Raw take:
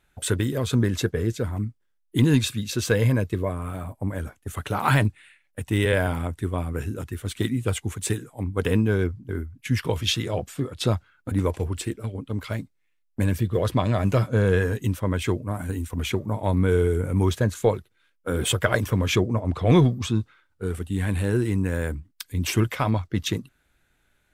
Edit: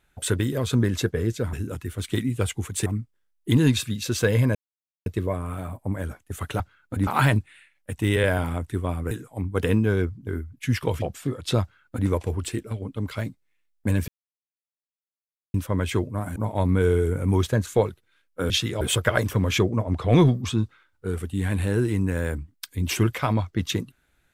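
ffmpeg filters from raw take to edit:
ffmpeg -i in.wav -filter_complex "[0:a]asplit=13[link_01][link_02][link_03][link_04][link_05][link_06][link_07][link_08][link_09][link_10][link_11][link_12][link_13];[link_01]atrim=end=1.532[link_14];[link_02]atrim=start=6.798:end=8.132[link_15];[link_03]atrim=start=1.528:end=3.22,asetpts=PTS-STARTPTS,afade=type=out:start_time=1.688:duration=0.004:curve=hsin,apad=pad_dur=0.51[link_16];[link_04]atrim=start=3.22:end=4.762,asetpts=PTS-STARTPTS,afade=type=in:duration=0.004:curve=hsin[link_17];[link_05]atrim=start=10.948:end=11.422[link_18];[link_06]atrim=start=4.758:end=6.802[link_19];[link_07]atrim=start=8.128:end=10.042[link_20];[link_08]atrim=start=10.348:end=13.41,asetpts=PTS-STARTPTS,afade=type=out:start_time=3.058:duration=0.004:curve=hsin[link_21];[link_09]atrim=start=13.41:end=14.87,asetpts=PTS-STARTPTS,volume=0[link_22];[link_10]atrim=start=14.87:end=15.692,asetpts=PTS-STARTPTS,afade=type=in:duration=0.004:curve=hsin[link_23];[link_11]atrim=start=16.238:end=18.382[link_24];[link_12]atrim=start=10.038:end=10.352[link_25];[link_13]atrim=start=18.378[link_26];[link_14][link_15]acrossfade=duration=0.004:curve1=hsin:curve2=hsin[link_27];[link_16][link_17]concat=n=2:v=0:a=1[link_28];[link_27][link_28]acrossfade=duration=0.004:curve1=hsin:curve2=hsin[link_29];[link_29][link_18]acrossfade=duration=0.004:curve1=hsin:curve2=hsin[link_30];[link_30][link_19]acrossfade=duration=0.004:curve1=hsin:curve2=hsin[link_31];[link_31][link_20]acrossfade=duration=0.004:curve1=hsin:curve2=hsin[link_32];[link_21][link_22][link_23]concat=n=3:v=0:a=1[link_33];[link_32][link_33]acrossfade=duration=0.004:curve1=hsin:curve2=hsin[link_34];[link_34][link_24]acrossfade=duration=0.004:curve1=hsin:curve2=hsin[link_35];[link_35][link_25]acrossfade=duration=0.004:curve1=hsin:curve2=hsin[link_36];[link_36][link_26]acrossfade=duration=0.004:curve1=hsin:curve2=hsin" out.wav

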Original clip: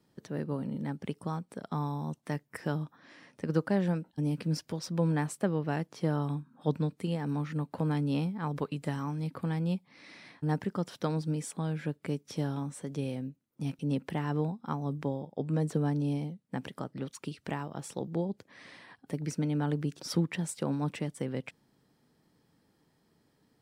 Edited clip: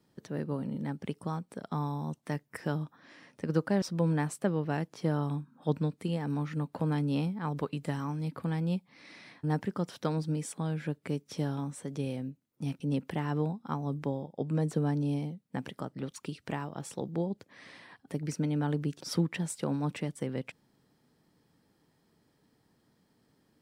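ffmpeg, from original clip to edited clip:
ffmpeg -i in.wav -filter_complex "[0:a]asplit=2[link_01][link_02];[link_01]atrim=end=3.822[link_03];[link_02]atrim=start=4.808[link_04];[link_03][link_04]acrossfade=duration=0.004:curve1=hsin:curve2=hsin" out.wav

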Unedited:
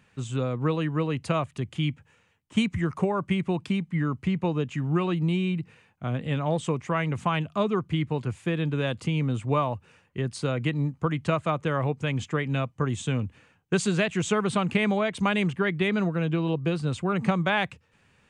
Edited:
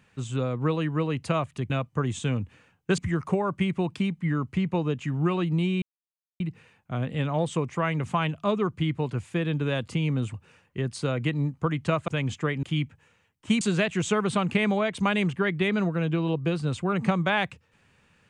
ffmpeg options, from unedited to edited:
ffmpeg -i in.wav -filter_complex "[0:a]asplit=8[link_01][link_02][link_03][link_04][link_05][link_06][link_07][link_08];[link_01]atrim=end=1.702[link_09];[link_02]atrim=start=12.528:end=13.812[link_10];[link_03]atrim=start=2.678:end=5.52,asetpts=PTS-STARTPTS,afade=type=out:start_time=2.838:duration=0.004:curve=hsin,apad=pad_dur=0.58[link_11];[link_04]atrim=start=5.52:end=9.462,asetpts=PTS-STARTPTS,afade=type=in:duration=0.004:curve=hsin[link_12];[link_05]atrim=start=9.738:end=11.482[link_13];[link_06]atrim=start=11.978:end=12.532[link_14];[link_07]atrim=start=1.698:end=2.682[link_15];[link_08]atrim=start=13.808[link_16];[link_09][link_10]acrossfade=duration=0.004:curve1=hsin:curve2=hsin[link_17];[link_11][link_12]concat=n=2:v=0:a=1[link_18];[link_17][link_18]acrossfade=duration=0.004:curve1=hsin:curve2=hsin[link_19];[link_19][link_13]acrossfade=duration=0.004:curve1=hsin:curve2=hsin[link_20];[link_20][link_14]acrossfade=duration=0.004:curve1=hsin:curve2=hsin[link_21];[link_21][link_15]acrossfade=duration=0.004:curve1=hsin:curve2=hsin[link_22];[link_22][link_16]acrossfade=duration=0.004:curve1=hsin:curve2=hsin" out.wav

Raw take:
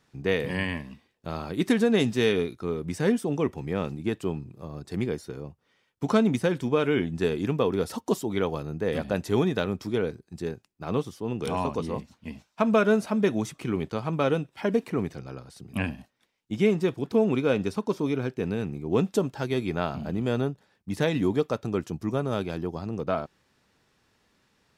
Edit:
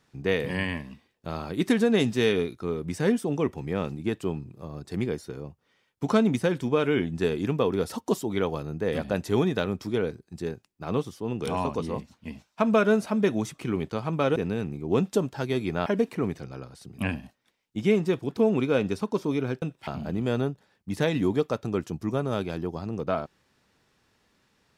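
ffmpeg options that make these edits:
ffmpeg -i in.wav -filter_complex "[0:a]asplit=5[link_01][link_02][link_03][link_04][link_05];[link_01]atrim=end=14.362[link_06];[link_02]atrim=start=18.368:end=19.872[link_07];[link_03]atrim=start=14.608:end=18.372[link_08];[link_04]atrim=start=14.358:end=14.612[link_09];[link_05]atrim=start=19.868[link_10];[link_06][link_07]acrossfade=duration=0.004:curve1=hsin:curve2=hsin[link_11];[link_11][link_08]acrossfade=duration=0.004:curve1=hsin:curve2=hsin[link_12];[link_12][link_09]acrossfade=duration=0.004:curve1=hsin:curve2=hsin[link_13];[link_13][link_10]acrossfade=duration=0.004:curve1=hsin:curve2=hsin" out.wav

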